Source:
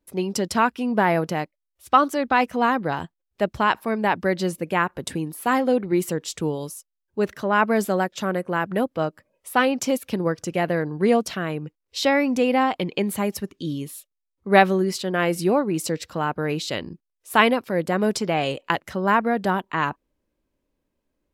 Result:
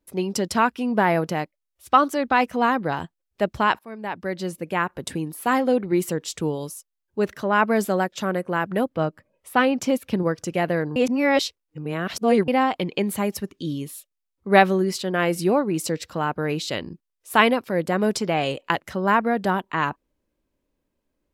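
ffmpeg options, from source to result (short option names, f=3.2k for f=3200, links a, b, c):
-filter_complex "[0:a]asettb=1/sr,asplit=3[a][b][c];[a]atrim=end=8.894[d];[b]atrim=start=8.89:end=10.23,asetpts=PTS-STARTPTS,afade=t=in:d=0.004:c=qsin,afade=t=out:st=1.336:d=0.004:c=qsin,bass=f=250:g=4,treble=f=4k:g=-5[e];[c]atrim=start=10.226[f];[d][e]acrossfade=d=0.004:c1=hsin:c2=qsin[g];[g][f]acrossfade=d=0.004:c1=qsin:c2=hsin,asplit=4[h][i][j][k];[h]atrim=end=3.79,asetpts=PTS-STARTPTS,afade=t=out:st=3.786:d=0.004:c=hsin:silence=0.141254[l];[i]atrim=start=3.79:end=10.962,asetpts=PTS-STARTPTS,afade=t=in:d=1.83:c=qsin:silence=0.141254[m];[j]atrim=start=10.958:end=12.482,asetpts=PTS-STARTPTS,areverse[n];[k]atrim=start=12.478[o];[l][m]concat=n=2:v=0:a=1[p];[p][n]acrossfade=d=0.004:c1=hsin:c2=hsin[q];[q][o]acrossfade=d=0.004:c1=hsin:c2=hsin"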